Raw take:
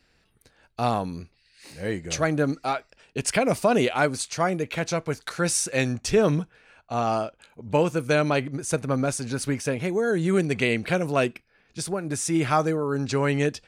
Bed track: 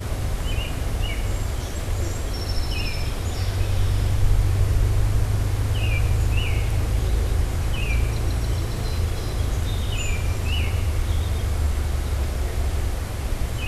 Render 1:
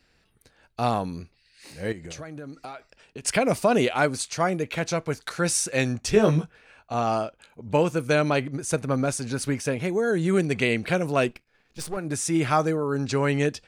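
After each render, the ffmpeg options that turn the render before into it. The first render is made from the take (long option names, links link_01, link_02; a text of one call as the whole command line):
ffmpeg -i in.wav -filter_complex "[0:a]asettb=1/sr,asplit=3[link_01][link_02][link_03];[link_01]atrim=end=1.924[link_04];[link_02]atrim=start=1.92:end=3.25,asetpts=PTS-STARTPTS,afade=type=in:duration=0.004:curve=qsin,afade=type=out:start_time=1.326:duration=0.004:curve=qsin,acompressor=threshold=-34dB:ratio=12:attack=3.2:release=140:knee=1:detection=peak[link_05];[link_03]atrim=start=3.246[link_06];[link_04][link_05]acrossfade=duration=0.004:curve1=hsin:curve2=qsin[link_07];[link_07][link_06]acrossfade=duration=0.004:curve1=qsin:curve2=hsin,asettb=1/sr,asplit=3[link_08][link_09][link_10];[link_08]atrim=end=6.124[link_11];[link_09]atrim=start=6.12:end=6.94,asetpts=PTS-STARTPTS,afade=type=in:duration=0.004:curve=qsin,afade=type=out:start_time=0.816:duration=0.004:curve=qsin,asplit=2[link_12][link_13];[link_13]adelay=19,volume=-4dB[link_14];[link_12][link_14]amix=inputs=2:normalize=0,atrim=end_sample=36162[link_15];[link_10]atrim=start=6.936[link_16];[link_11][link_15]acrossfade=duration=0.004:curve1=hsin:curve2=qsin[link_17];[link_17][link_16]acrossfade=duration=0.004:curve1=qsin:curve2=hsin,asettb=1/sr,asplit=3[link_18][link_19][link_20];[link_18]atrim=end=11.294[link_21];[link_19]atrim=start=11.29:end=11.97,asetpts=PTS-STARTPTS,afade=type=in:duration=0.004:curve=qsin,afade=type=out:start_time=0.676:duration=0.004:curve=qsin,aeval=exprs='if(lt(val(0),0),0.251*val(0),val(0))':channel_layout=same[link_22];[link_20]atrim=start=11.966[link_23];[link_21][link_22]acrossfade=duration=0.004:curve1=hsin:curve2=qsin[link_24];[link_24][link_23]acrossfade=duration=0.004:curve1=qsin:curve2=hsin" out.wav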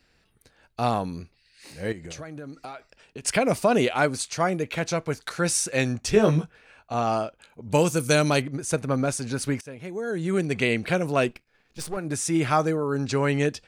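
ffmpeg -i in.wav -filter_complex "[0:a]asettb=1/sr,asplit=3[link_01][link_02][link_03];[link_01]atrim=end=7.724[link_04];[link_02]atrim=start=7.72:end=8.42,asetpts=PTS-STARTPTS,afade=type=in:duration=0.004:curve=qsin,afade=type=out:start_time=0.696:duration=0.004:curve=qsin,bass=frequency=250:gain=3,treble=frequency=4000:gain=14[link_05];[link_03]atrim=start=8.416[link_06];[link_04][link_05]acrossfade=duration=0.004:curve1=hsin:curve2=qsin[link_07];[link_07][link_06]acrossfade=duration=0.004:curve1=qsin:curve2=hsin,asplit=2[link_08][link_09];[link_08]atrim=end=9.61,asetpts=PTS-STARTPTS,afade=type=out:start_time=9.606:duration=0.004:curve=hsin:silence=0.125893[link_10];[link_09]atrim=start=9.61,asetpts=PTS-STARTPTS,afade=type=in:duration=1.05:silence=0.125893[link_11];[link_10][link_11]concat=n=2:v=0:a=1" out.wav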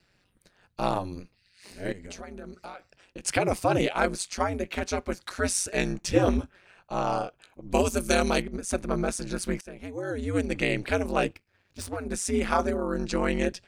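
ffmpeg -i in.wav -af "aeval=exprs='val(0)*sin(2*PI*93*n/s)':channel_layout=same" out.wav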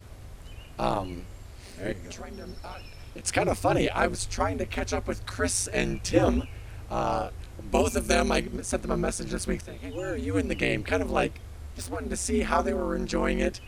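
ffmpeg -i in.wav -i bed.wav -filter_complex "[1:a]volume=-19dB[link_01];[0:a][link_01]amix=inputs=2:normalize=0" out.wav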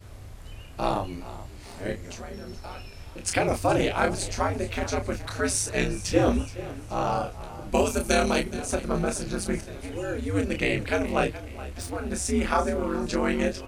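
ffmpeg -i in.wav -filter_complex "[0:a]asplit=2[link_01][link_02];[link_02]adelay=30,volume=-6dB[link_03];[link_01][link_03]amix=inputs=2:normalize=0,asplit=5[link_04][link_05][link_06][link_07][link_08];[link_05]adelay=422,afreqshift=34,volume=-16dB[link_09];[link_06]adelay=844,afreqshift=68,volume=-23.5dB[link_10];[link_07]adelay=1266,afreqshift=102,volume=-31.1dB[link_11];[link_08]adelay=1688,afreqshift=136,volume=-38.6dB[link_12];[link_04][link_09][link_10][link_11][link_12]amix=inputs=5:normalize=0" out.wav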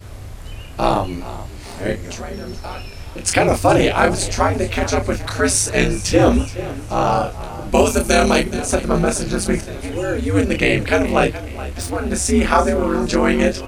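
ffmpeg -i in.wav -af "volume=9.5dB,alimiter=limit=-1dB:level=0:latency=1" out.wav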